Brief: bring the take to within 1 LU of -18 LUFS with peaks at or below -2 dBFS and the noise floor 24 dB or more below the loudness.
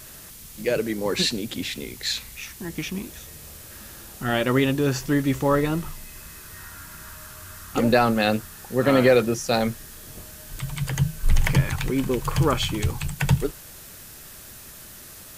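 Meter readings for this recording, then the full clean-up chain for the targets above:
noise floor -43 dBFS; noise floor target -48 dBFS; loudness -24.0 LUFS; peak -6.0 dBFS; loudness target -18.0 LUFS
-> denoiser 6 dB, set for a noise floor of -43 dBFS; gain +6 dB; limiter -2 dBFS

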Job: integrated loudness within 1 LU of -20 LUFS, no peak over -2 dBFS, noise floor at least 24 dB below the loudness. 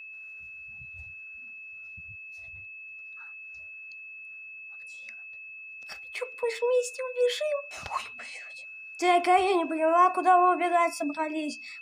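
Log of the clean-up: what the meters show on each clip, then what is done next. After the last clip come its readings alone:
steady tone 2600 Hz; tone level -41 dBFS; loudness -26.0 LUFS; peak -9.5 dBFS; loudness target -20.0 LUFS
-> notch 2600 Hz, Q 30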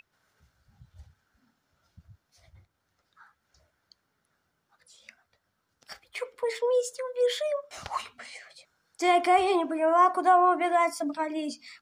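steady tone none; loudness -26.0 LUFS; peak -10.0 dBFS; loudness target -20.0 LUFS
-> gain +6 dB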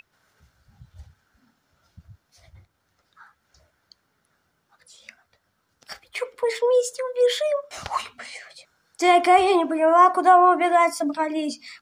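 loudness -20.0 LUFS; peak -4.0 dBFS; noise floor -72 dBFS

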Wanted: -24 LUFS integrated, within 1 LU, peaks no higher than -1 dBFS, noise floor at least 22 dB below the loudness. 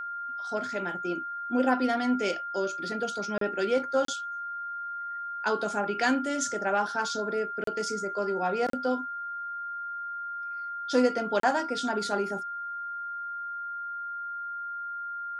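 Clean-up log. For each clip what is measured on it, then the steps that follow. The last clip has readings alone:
dropouts 5; longest dropout 33 ms; steady tone 1400 Hz; tone level -33 dBFS; loudness -30.0 LUFS; peak -12.0 dBFS; loudness target -24.0 LUFS
-> interpolate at 3.38/4.05/7.64/8.7/11.4, 33 ms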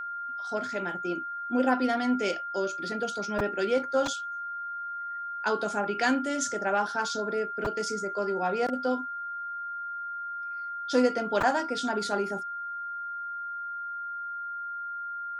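dropouts 0; steady tone 1400 Hz; tone level -33 dBFS
-> notch 1400 Hz, Q 30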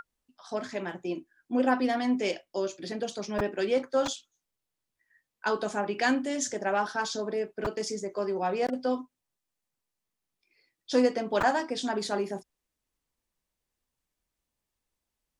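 steady tone none; loudness -30.0 LUFS; peak -12.0 dBFS; loudness target -24.0 LUFS
-> gain +6 dB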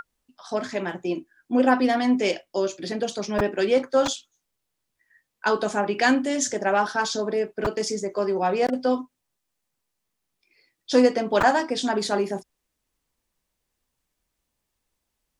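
loudness -24.0 LUFS; peak -6.0 dBFS; noise floor -80 dBFS

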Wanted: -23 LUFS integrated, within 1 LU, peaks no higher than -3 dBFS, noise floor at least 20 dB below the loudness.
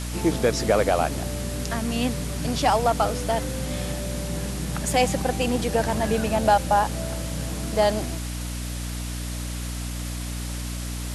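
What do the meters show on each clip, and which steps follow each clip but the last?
hum 60 Hz; harmonics up to 300 Hz; hum level -29 dBFS; noise floor -31 dBFS; noise floor target -45 dBFS; loudness -25.0 LUFS; peak -7.5 dBFS; loudness target -23.0 LUFS
-> notches 60/120/180/240/300 Hz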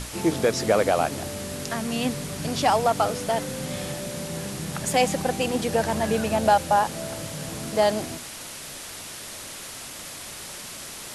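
hum none; noise floor -38 dBFS; noise floor target -46 dBFS
-> denoiser 8 dB, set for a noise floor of -38 dBFS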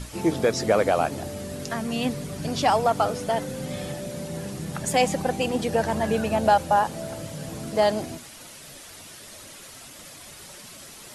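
noise floor -44 dBFS; noise floor target -45 dBFS
-> denoiser 6 dB, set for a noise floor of -44 dBFS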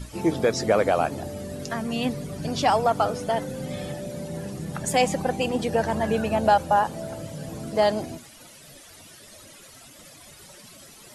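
noise floor -48 dBFS; loudness -25.0 LUFS; peak -8.5 dBFS; loudness target -23.0 LUFS
-> gain +2 dB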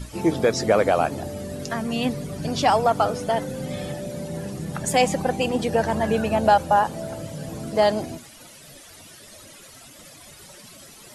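loudness -23.0 LUFS; peak -6.5 dBFS; noise floor -46 dBFS

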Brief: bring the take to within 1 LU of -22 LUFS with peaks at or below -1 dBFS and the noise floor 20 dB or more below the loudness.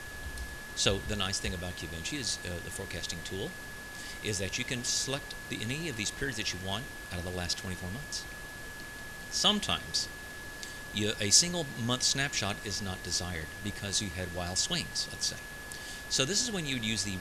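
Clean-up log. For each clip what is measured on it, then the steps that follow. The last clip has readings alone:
steady tone 1700 Hz; tone level -44 dBFS; noise floor -44 dBFS; noise floor target -52 dBFS; loudness -32.0 LUFS; peak -9.5 dBFS; loudness target -22.0 LUFS
-> notch 1700 Hz, Q 30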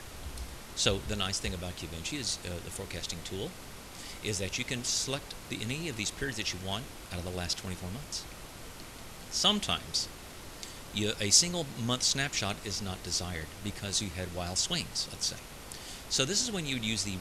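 steady tone none; noise floor -47 dBFS; noise floor target -52 dBFS
-> noise print and reduce 6 dB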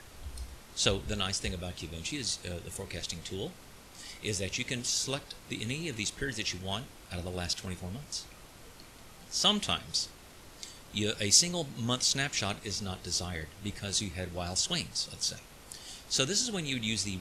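noise floor -52 dBFS; loudness -32.0 LUFS; peak -9.5 dBFS; loudness target -22.0 LUFS
-> gain +10 dB; limiter -1 dBFS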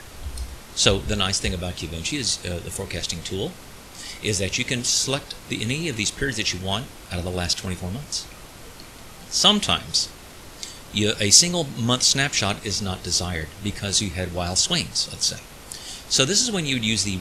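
loudness -22.0 LUFS; peak -1.0 dBFS; noise floor -42 dBFS

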